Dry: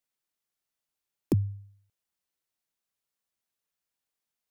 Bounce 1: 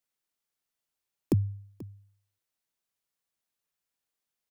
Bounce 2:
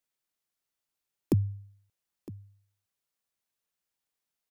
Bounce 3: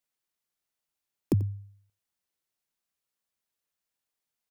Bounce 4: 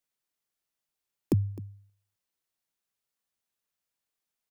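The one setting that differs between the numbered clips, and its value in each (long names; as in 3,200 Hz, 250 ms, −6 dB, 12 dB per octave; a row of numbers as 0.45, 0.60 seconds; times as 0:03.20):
single-tap delay, delay time: 485, 960, 89, 259 milliseconds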